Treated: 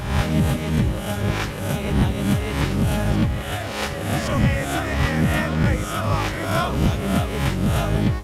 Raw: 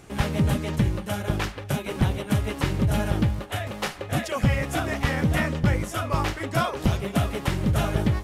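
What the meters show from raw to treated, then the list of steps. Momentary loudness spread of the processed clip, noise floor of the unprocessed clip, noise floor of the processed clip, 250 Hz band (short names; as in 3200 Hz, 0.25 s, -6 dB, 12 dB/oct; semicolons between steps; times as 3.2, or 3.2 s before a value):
4 LU, -38 dBFS, -28 dBFS, +4.5 dB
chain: spectral swells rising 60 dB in 0.80 s; reverse echo 1.119 s -12 dB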